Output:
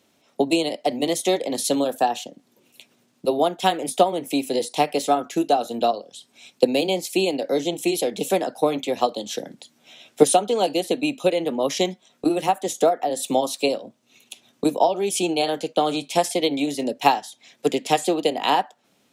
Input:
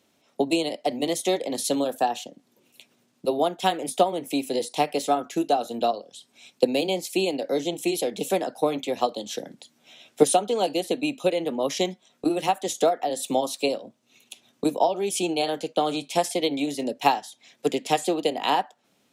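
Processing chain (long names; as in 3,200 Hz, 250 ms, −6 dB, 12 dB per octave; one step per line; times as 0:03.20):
0:12.37–0:13.17: dynamic equaliser 3,700 Hz, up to −5 dB, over −40 dBFS, Q 0.8
level +3 dB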